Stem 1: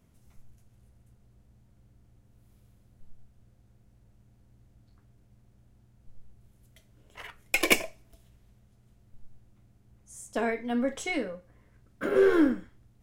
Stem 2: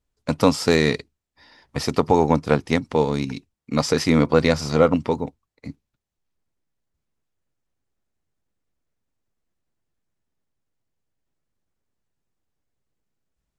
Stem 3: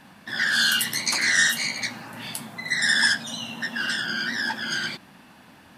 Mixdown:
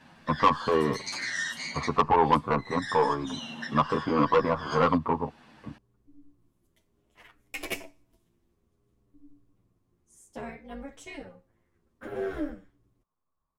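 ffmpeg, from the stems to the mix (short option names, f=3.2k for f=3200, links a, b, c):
-filter_complex "[0:a]acontrast=86,tremolo=f=290:d=0.857,volume=-11dB[a];[1:a]lowpass=f=1.1k:t=q:w=10,volume=-3.5dB,asplit=2[b][c];[2:a]lowpass=6.8k,acompressor=threshold=-28dB:ratio=3,volume=-1.5dB[d];[c]apad=whole_len=254565[e];[d][e]sidechaincompress=threshold=-22dB:ratio=6:attack=16:release=390[f];[a][b][f]amix=inputs=3:normalize=0,asoftclip=type=tanh:threshold=-10dB,asplit=2[g][h];[h]adelay=9,afreqshift=-0.6[i];[g][i]amix=inputs=2:normalize=1"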